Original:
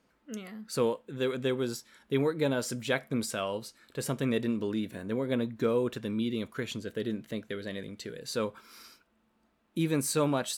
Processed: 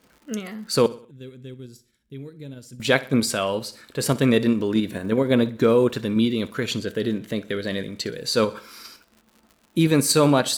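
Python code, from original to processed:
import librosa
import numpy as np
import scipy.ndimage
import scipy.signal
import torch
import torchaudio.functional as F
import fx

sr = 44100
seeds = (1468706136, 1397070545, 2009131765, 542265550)

p1 = fx.dmg_crackle(x, sr, seeds[0], per_s=130.0, level_db=-53.0)
p2 = fx.tone_stack(p1, sr, knobs='10-0-1', at=(0.86, 2.8))
p3 = p2 + fx.echo_feedback(p2, sr, ms=62, feedback_pct=43, wet_db=-17.5, dry=0)
p4 = fx.dynamic_eq(p3, sr, hz=4500.0, q=4.6, threshold_db=-58.0, ratio=4.0, max_db=6)
p5 = fx.level_steps(p4, sr, step_db=10)
p6 = p4 + (p5 * 10.0 ** (2.0 / 20.0))
y = p6 * 10.0 ** (5.0 / 20.0)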